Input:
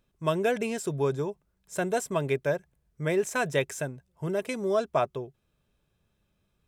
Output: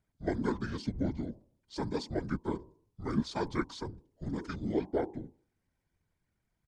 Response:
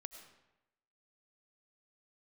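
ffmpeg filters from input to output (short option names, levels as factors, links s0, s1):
-af "bandreject=f=149.9:t=h:w=4,bandreject=f=299.8:t=h:w=4,bandreject=f=449.7:t=h:w=4,bandreject=f=599.6:t=h:w=4,bandreject=f=749.5:t=h:w=4,bandreject=f=899.4:t=h:w=4,bandreject=f=1049.3:t=h:w=4,bandreject=f=1199.2:t=h:w=4,bandreject=f=1349.1:t=h:w=4,bandreject=f=1499:t=h:w=4,bandreject=f=1648.9:t=h:w=4,asetrate=26222,aresample=44100,atempo=1.68179,afftfilt=real='hypot(re,im)*cos(2*PI*random(0))':imag='hypot(re,im)*sin(2*PI*random(1))':win_size=512:overlap=0.75"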